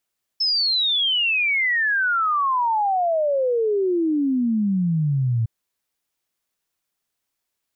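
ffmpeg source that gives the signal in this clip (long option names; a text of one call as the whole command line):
ffmpeg -f lavfi -i "aevalsrc='0.133*clip(min(t,5.06-t)/0.01,0,1)*sin(2*PI*5300*5.06/log(110/5300)*(exp(log(110/5300)*t/5.06)-1))':duration=5.06:sample_rate=44100" out.wav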